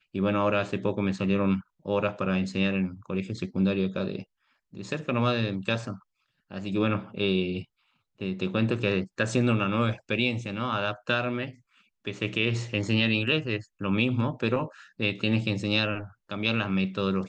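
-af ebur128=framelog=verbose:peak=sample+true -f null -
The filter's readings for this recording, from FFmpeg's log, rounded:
Integrated loudness:
  I:         -27.7 LUFS
  Threshold: -38.1 LUFS
Loudness range:
  LRA:         3.2 LU
  Threshold: -48.4 LUFS
  LRA low:   -30.2 LUFS
  LRA high:  -27.0 LUFS
Sample peak:
  Peak:      -10.3 dBFS
True peak:
  Peak:      -10.3 dBFS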